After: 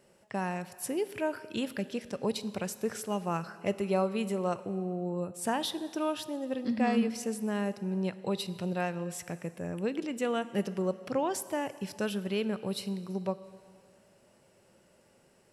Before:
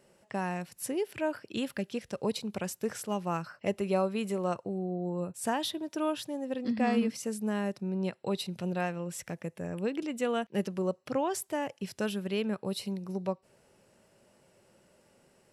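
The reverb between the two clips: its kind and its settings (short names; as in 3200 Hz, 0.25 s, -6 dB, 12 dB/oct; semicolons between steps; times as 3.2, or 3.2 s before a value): plate-style reverb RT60 2.1 s, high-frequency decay 0.95×, DRR 14 dB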